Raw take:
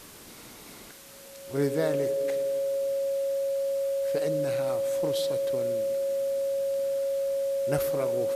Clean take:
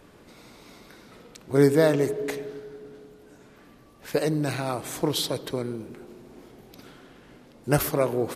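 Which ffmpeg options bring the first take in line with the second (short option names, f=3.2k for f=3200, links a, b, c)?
-af "bandreject=f=550:w=30,afwtdn=0.004,asetnsamples=n=441:p=0,asendcmd='0.91 volume volume 8.5dB',volume=0dB"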